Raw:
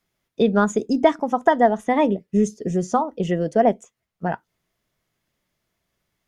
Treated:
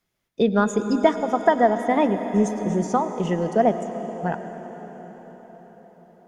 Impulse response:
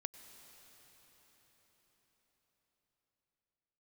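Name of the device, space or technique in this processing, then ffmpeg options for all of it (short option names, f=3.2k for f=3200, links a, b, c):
cathedral: -filter_complex "[1:a]atrim=start_sample=2205[a];[0:a][a]afir=irnorm=-1:irlink=0,volume=2dB"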